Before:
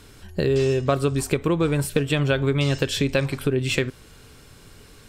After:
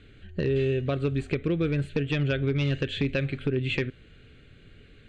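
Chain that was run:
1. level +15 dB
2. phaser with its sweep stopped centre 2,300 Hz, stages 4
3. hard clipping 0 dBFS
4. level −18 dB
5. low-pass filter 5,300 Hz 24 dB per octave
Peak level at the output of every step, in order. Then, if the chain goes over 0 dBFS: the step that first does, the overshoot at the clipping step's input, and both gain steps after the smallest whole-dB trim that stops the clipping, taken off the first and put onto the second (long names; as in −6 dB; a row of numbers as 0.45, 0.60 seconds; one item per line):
+9.0, +8.5, 0.0, −18.0, −17.0 dBFS
step 1, 8.5 dB
step 1 +6 dB, step 4 −9 dB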